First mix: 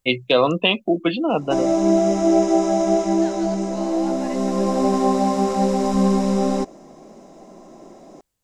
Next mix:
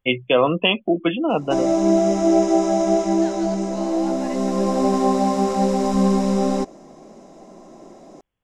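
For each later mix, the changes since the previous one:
first voice: add linear-phase brick-wall low-pass 3,500 Hz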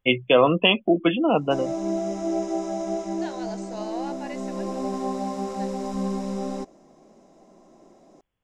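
background −10.0 dB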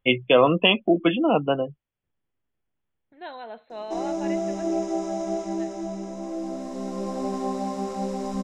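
second voice: add linear-phase brick-wall low-pass 4,200 Hz
background: entry +2.40 s

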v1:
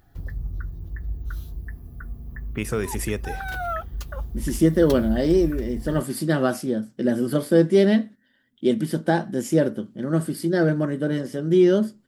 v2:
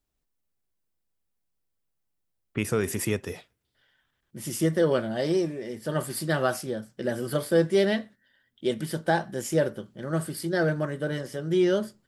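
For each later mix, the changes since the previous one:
second voice: add parametric band 250 Hz −12.5 dB 1.1 octaves
background: muted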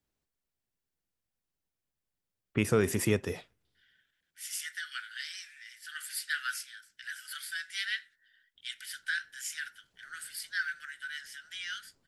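second voice: add Butterworth high-pass 1,400 Hz 96 dB per octave
master: add high-shelf EQ 8,400 Hz −5 dB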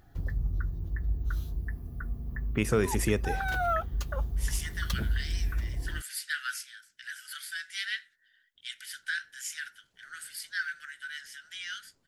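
background: unmuted
master: add parametric band 6,500 Hz +2.5 dB 0.22 octaves

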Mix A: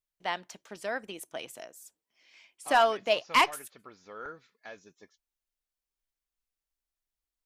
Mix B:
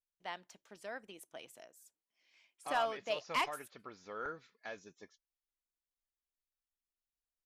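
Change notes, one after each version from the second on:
first voice −11.0 dB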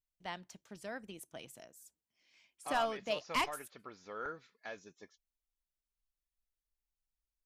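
first voice: add bass and treble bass +14 dB, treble +4 dB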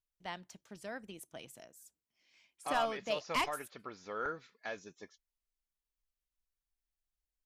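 second voice +4.0 dB

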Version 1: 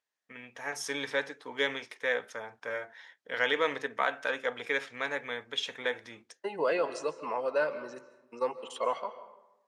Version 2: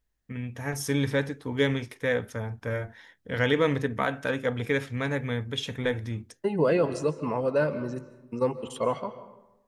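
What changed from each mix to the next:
master: remove band-pass filter 620–7,100 Hz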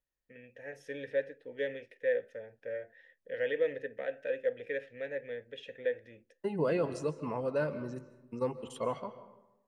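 first voice: add formant filter e
second voice −7.0 dB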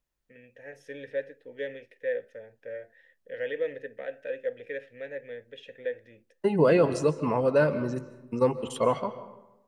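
second voice +9.5 dB

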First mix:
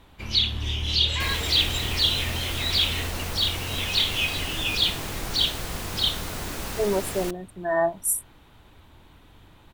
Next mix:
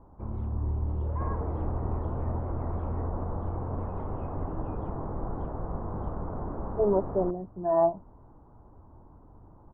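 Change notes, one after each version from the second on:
master: add Butterworth low-pass 1,100 Hz 36 dB per octave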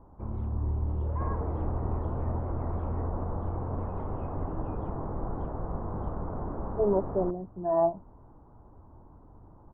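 speech: add high-frequency loss of the air 460 metres

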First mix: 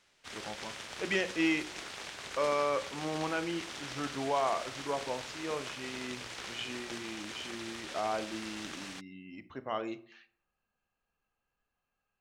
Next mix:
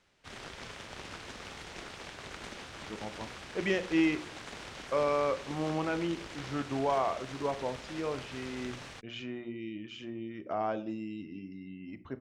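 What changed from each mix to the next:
speech: entry +2.55 s
master: add spectral tilt −2 dB per octave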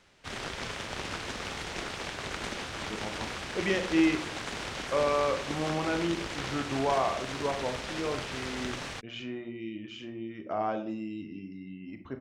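speech: send +8.0 dB
background +8.0 dB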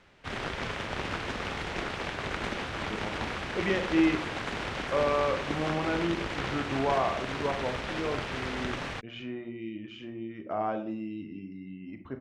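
background +3.5 dB
master: add bass and treble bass +1 dB, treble −11 dB

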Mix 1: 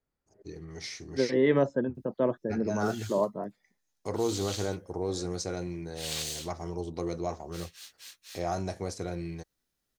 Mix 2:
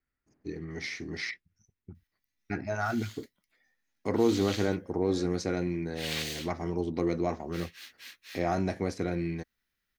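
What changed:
second voice: muted
master: add octave-band graphic EQ 250/2,000/8,000 Hz +10/+9/−8 dB

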